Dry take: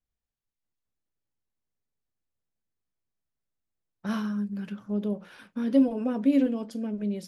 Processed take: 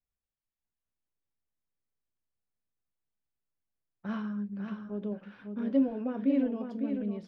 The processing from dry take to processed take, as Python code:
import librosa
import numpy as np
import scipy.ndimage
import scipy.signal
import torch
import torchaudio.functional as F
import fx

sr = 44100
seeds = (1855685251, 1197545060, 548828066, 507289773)

p1 = scipy.signal.sosfilt(scipy.signal.butter(2, 2600.0, 'lowpass', fs=sr, output='sos'), x)
p2 = p1 + fx.echo_single(p1, sr, ms=552, db=-7.0, dry=0)
y = p2 * 10.0 ** (-5.0 / 20.0)